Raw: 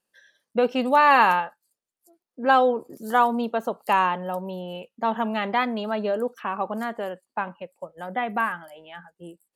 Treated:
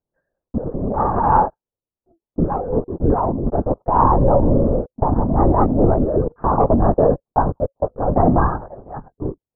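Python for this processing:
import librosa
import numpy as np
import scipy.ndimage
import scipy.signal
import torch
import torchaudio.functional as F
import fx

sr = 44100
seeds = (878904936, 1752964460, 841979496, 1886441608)

y = fx.leveller(x, sr, passes=3)
y = scipy.signal.sosfilt(scipy.signal.bessel(8, 640.0, 'lowpass', norm='mag', fs=sr, output='sos'), y)
y = fx.low_shelf(y, sr, hz=120.0, db=6.5)
y = fx.over_compress(y, sr, threshold_db=-19.0, ratio=-0.5)
y = fx.lpc_vocoder(y, sr, seeds[0], excitation='whisper', order=10)
y = y * librosa.db_to_amplitude(4.5)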